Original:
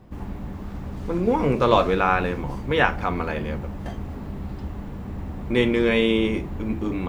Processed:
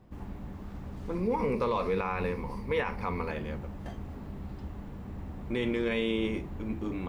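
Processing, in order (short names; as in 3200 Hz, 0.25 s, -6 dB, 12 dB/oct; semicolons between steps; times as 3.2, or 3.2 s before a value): 1.15–3.31 ripple EQ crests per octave 0.89, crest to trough 9 dB; limiter -12 dBFS, peak gain reduction 10 dB; gain -8 dB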